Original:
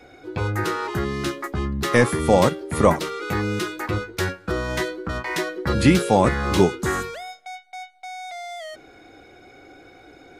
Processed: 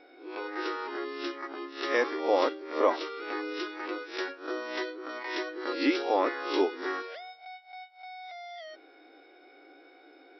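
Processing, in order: reverse spectral sustain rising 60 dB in 0.39 s; brick-wall FIR band-pass 260–5800 Hz; trim -9 dB

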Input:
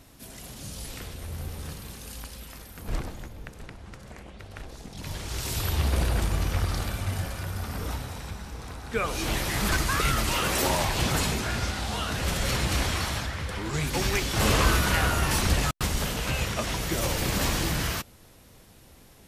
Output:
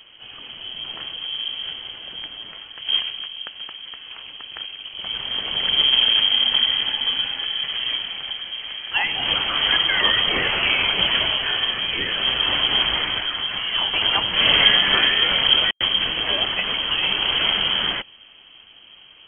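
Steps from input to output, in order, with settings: frequency inversion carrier 3.2 kHz; trim +5.5 dB

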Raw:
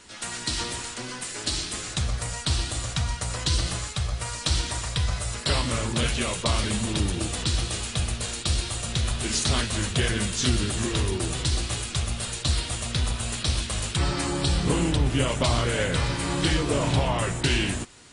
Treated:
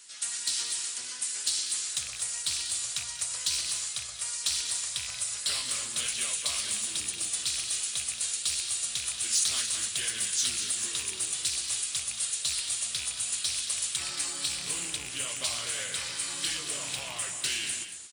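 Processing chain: rattle on loud lows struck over -21 dBFS, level -20 dBFS; high-pass 76 Hz; band-stop 910 Hz, Q 16; in parallel at -8 dB: hard clipper -22 dBFS, distortion -13 dB; on the sum: pre-emphasis filter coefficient 0.97; on a send: multi-tap echo 191/227 ms -15/-10.5 dB

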